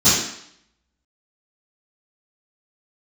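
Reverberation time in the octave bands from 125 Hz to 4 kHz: 0.55 s, 0.70 s, 0.65 s, 0.75 s, 0.70 s, 0.70 s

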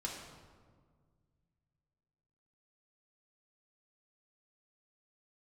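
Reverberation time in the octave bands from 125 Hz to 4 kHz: 3.2 s, 2.4 s, 1.9 s, 1.6 s, 1.2 s, 0.95 s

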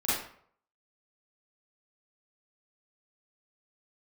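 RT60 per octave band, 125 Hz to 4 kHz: 0.60 s, 0.55 s, 0.60 s, 0.60 s, 0.50 s, 0.40 s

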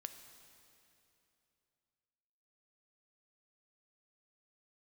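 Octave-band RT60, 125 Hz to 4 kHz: 3.3 s, 3.1 s, 3.0 s, 2.8 s, 2.7 s, 2.6 s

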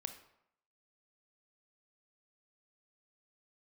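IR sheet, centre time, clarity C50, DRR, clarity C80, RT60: 11 ms, 10.0 dB, 8.0 dB, 13.5 dB, 0.75 s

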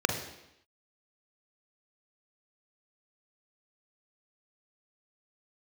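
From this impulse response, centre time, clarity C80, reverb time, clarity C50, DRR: 27 ms, 9.5 dB, 0.85 s, 6.5 dB, 3.5 dB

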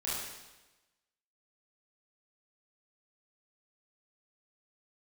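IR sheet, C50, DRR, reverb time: -2.0 dB, -8.5 dB, 1.1 s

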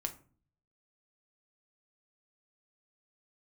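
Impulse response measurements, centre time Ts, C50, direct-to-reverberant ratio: 7 ms, 14.5 dB, 5.5 dB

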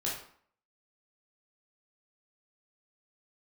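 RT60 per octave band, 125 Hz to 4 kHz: 0.45 s, 0.60 s, 0.55 s, 0.60 s, 0.50 s, 0.40 s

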